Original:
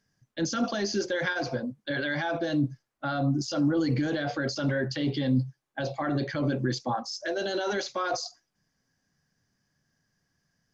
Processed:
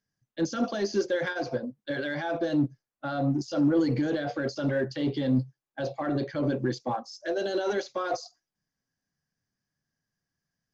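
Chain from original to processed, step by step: dynamic EQ 450 Hz, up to +6 dB, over -42 dBFS, Q 0.96; in parallel at -11 dB: overloaded stage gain 23.5 dB; on the sum: upward expander 1.5:1, over -38 dBFS; gain -2.5 dB

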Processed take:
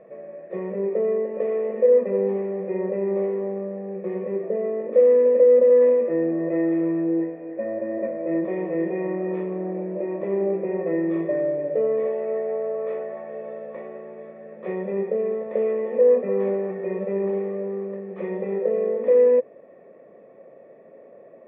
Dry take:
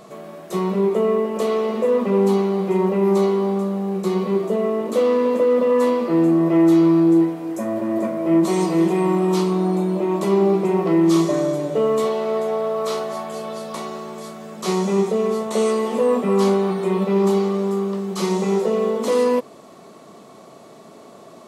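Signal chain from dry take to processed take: vocal tract filter e; air absorption 320 m; gain +7.5 dB

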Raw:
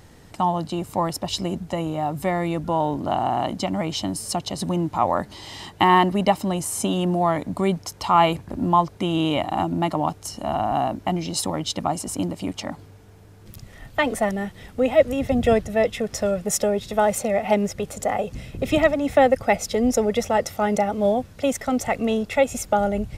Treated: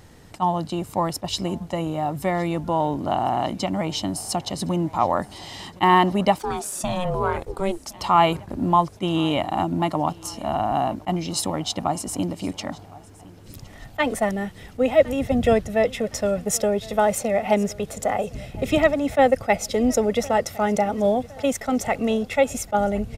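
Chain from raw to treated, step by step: 6.38–7.97 ring modulator 680 Hz -> 140 Hz; feedback echo 1.064 s, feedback 48%, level -22.5 dB; attack slew limiter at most 600 dB/s

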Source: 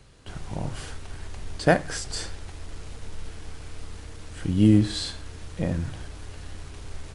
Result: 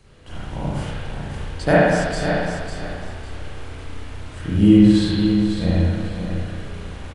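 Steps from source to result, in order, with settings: feedback echo 0.55 s, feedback 25%, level -7.5 dB; spring tank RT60 1.5 s, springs 34/58 ms, chirp 40 ms, DRR -8.5 dB; gain -2 dB

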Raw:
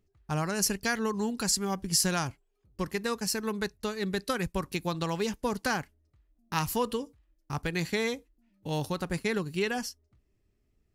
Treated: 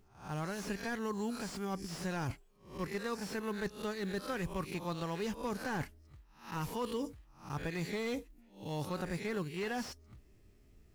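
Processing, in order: spectral swells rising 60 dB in 0.32 s; reverse; compressor 4:1, threshold -46 dBFS, peak gain reduction 21 dB; reverse; short-mantissa float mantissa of 4-bit; slew limiter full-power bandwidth 10 Hz; gain +8.5 dB

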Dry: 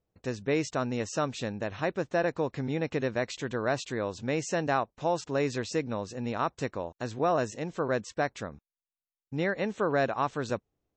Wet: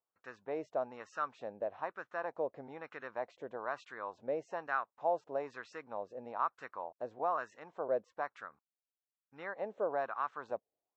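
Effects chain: wah 1.1 Hz 580–1400 Hz, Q 3.3

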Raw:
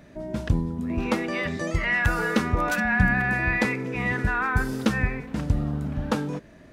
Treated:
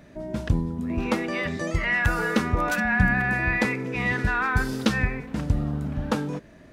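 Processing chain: 3.88–5.05 dynamic EQ 4200 Hz, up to +6 dB, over -47 dBFS, Q 1

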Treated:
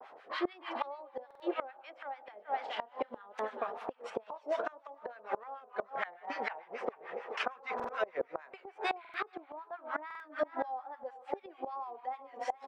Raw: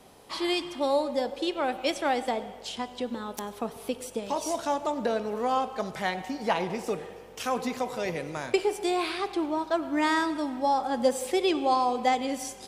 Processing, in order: harmonic tremolo 6.7 Hz, depth 100%, crossover 1000 Hz; vibrato 2.4 Hz 95 cents; Butterworth band-pass 1100 Hz, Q 0.88; rotary speaker horn 0.9 Hz; 2.34–3.3 doubler 29 ms -8 dB; feedback echo 0.424 s, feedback 16%, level -15.5 dB; flipped gate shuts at -37 dBFS, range -25 dB; stuck buffer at 1.26/7.75/9/10.06, samples 2048, times 2; gain +16.5 dB

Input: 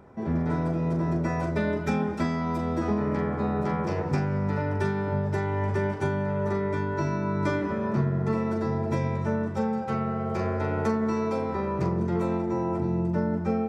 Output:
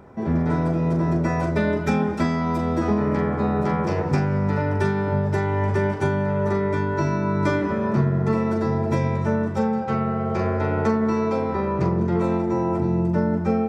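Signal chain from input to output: 9.68–12.24 air absorption 54 m; gain +5 dB

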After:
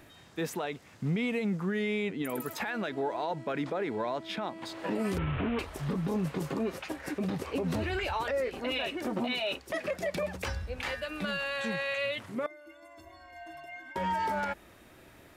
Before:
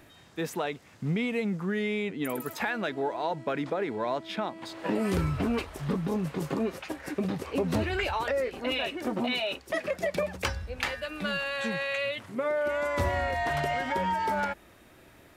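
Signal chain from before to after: 5.18–5.59 delta modulation 16 kbps, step -29 dBFS; limiter -23.5 dBFS, peak gain reduction 10.5 dB; 12.46–13.96 metallic resonator 320 Hz, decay 0.27 s, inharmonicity 0.03

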